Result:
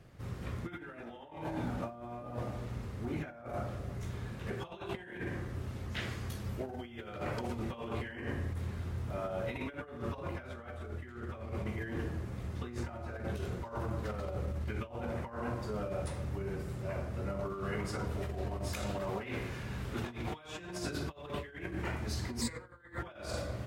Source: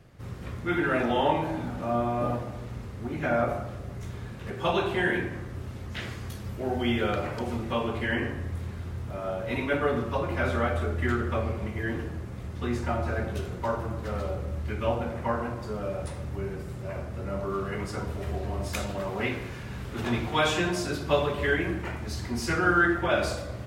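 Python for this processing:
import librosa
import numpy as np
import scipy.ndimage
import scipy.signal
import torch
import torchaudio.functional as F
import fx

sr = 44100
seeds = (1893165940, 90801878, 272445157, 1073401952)

y = fx.over_compress(x, sr, threshold_db=-32.0, ratio=-0.5)
y = fx.ripple_eq(y, sr, per_octave=1.0, db=15, at=(22.41, 22.99))
y = y * 10.0 ** (-6.0 / 20.0)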